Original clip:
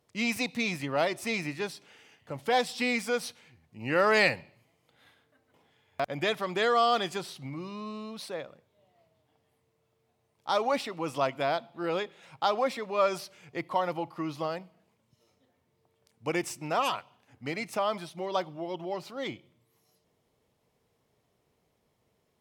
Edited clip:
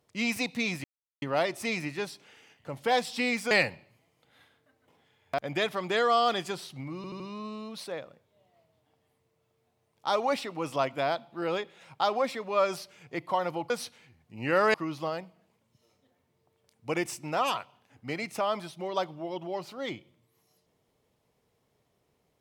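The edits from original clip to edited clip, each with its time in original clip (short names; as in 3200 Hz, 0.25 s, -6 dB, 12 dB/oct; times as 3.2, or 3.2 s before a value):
0.84 insert silence 0.38 s
3.13–4.17 move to 14.12
7.62 stutter 0.08 s, 4 plays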